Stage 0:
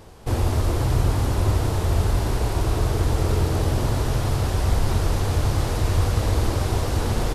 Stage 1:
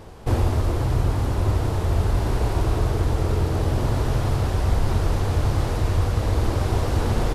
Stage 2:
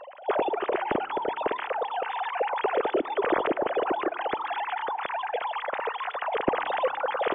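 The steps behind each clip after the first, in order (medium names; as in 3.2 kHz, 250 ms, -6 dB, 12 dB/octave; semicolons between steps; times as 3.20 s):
treble shelf 3.6 kHz -6.5 dB; gain riding 0.5 s
formants replaced by sine waves; on a send at -19 dB: reverberation RT60 2.5 s, pre-delay 23 ms; on the sum: trim -8 dB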